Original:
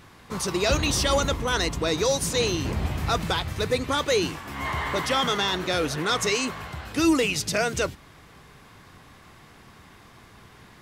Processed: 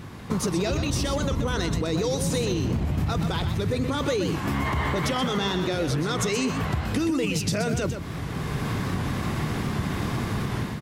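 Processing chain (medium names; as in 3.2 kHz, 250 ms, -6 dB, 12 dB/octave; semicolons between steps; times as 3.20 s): peaking EQ 150 Hz +11 dB 3 oct; level rider gain up to 14.5 dB; peak limiter -10.5 dBFS, peak gain reduction 9.5 dB; compression 6:1, threshold -27 dBFS, peak gain reduction 12.5 dB; on a send: delay 125 ms -8.5 dB; on the sum: warped record 78 rpm, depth 100 cents; trim +3.5 dB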